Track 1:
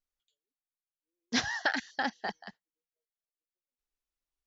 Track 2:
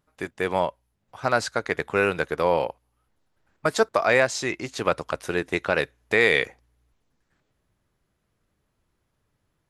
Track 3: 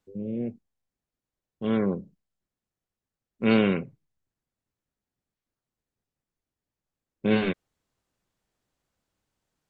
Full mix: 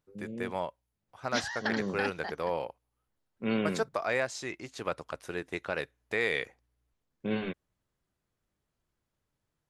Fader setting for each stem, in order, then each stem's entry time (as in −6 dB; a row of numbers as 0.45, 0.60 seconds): −4.0, −10.5, −9.0 decibels; 0.00, 0.00, 0.00 seconds